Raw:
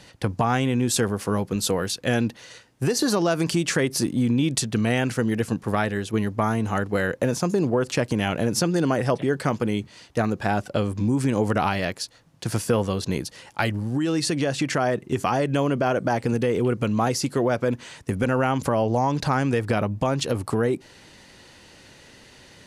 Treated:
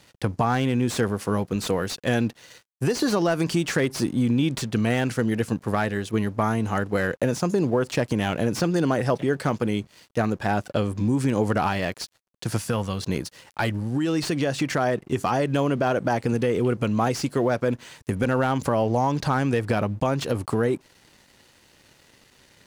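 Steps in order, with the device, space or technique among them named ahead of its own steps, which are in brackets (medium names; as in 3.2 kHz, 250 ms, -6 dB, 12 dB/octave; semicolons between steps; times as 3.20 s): early transistor amplifier (crossover distortion -50.5 dBFS; slew-rate limiter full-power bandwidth 190 Hz); 12.57–13.01 s: peaking EQ 390 Hz -8 dB 1.3 oct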